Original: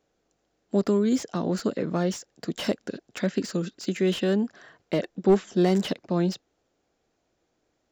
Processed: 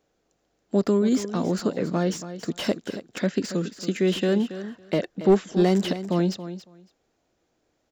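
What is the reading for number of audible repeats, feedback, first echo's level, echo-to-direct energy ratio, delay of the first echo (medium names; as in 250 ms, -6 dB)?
2, 15%, -12.5 dB, -12.5 dB, 278 ms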